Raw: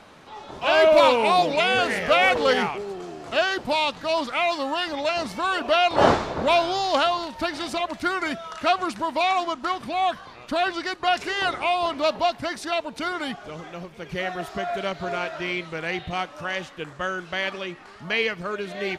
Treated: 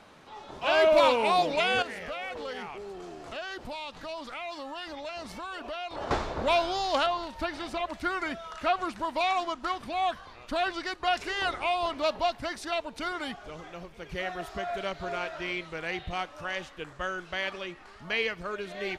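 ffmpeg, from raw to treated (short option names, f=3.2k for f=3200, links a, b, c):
-filter_complex "[0:a]asettb=1/sr,asplit=3[a][b][c];[a]atrim=end=1.824[d];[b]atrim=start=1.82:end=6.11,asetpts=PTS-STARTPTS,afade=t=in:d=0.004:c=qsin,afade=t=out:st=4.286:d=0.004:c=qsin,acompressor=threshold=-32dB:ratio=3:attack=3.2:release=140:knee=1:detection=peak[e];[c]atrim=start=6.106[f];[d][e]acrossfade=d=0.004:c1=hsin:c2=qsin[g];[g][f]acrossfade=d=0.004:c1=qsin:c2=hsin,asettb=1/sr,asplit=3[h][i][j];[h]atrim=end=7.064[k];[i]atrim=start=7.06:end=9.05,asetpts=PTS-STARTPTS,afade=t=in:d=0.004:c=qsin,afade=t=out:st=1.986:d=0.004:c=qsin,acrossover=split=3200[l][m];[m]acompressor=threshold=-41dB:ratio=4:attack=1:release=60[n];[l][n]amix=inputs=2:normalize=0[o];[j]atrim=start=9.046[p];[k][o]acrossfade=d=0.004:c1=hsin:c2=qsin[q];[q][p]acrossfade=d=0.004:c1=qsin:c2=hsin,asubboost=boost=4.5:cutoff=63,volume=-5dB"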